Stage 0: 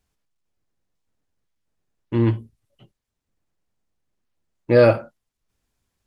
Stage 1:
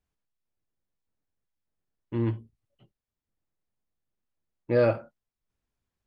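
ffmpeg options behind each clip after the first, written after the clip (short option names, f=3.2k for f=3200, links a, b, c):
-af "highshelf=f=4.6k:g=-8.5,volume=-8.5dB"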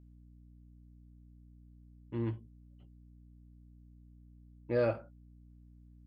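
-af "aeval=exprs='val(0)+0.00398*(sin(2*PI*60*n/s)+sin(2*PI*2*60*n/s)/2+sin(2*PI*3*60*n/s)/3+sin(2*PI*4*60*n/s)/4+sin(2*PI*5*60*n/s)/5)':c=same,volume=-7.5dB"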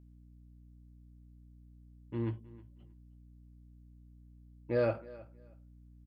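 -af "aecho=1:1:315|630:0.1|0.02"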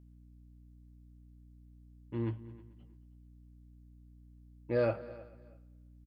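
-af "aecho=1:1:220|440|660:0.106|0.0381|0.0137"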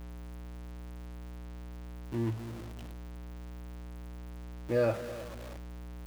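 -af "aeval=exprs='val(0)+0.5*0.00944*sgn(val(0))':c=same,volume=1dB"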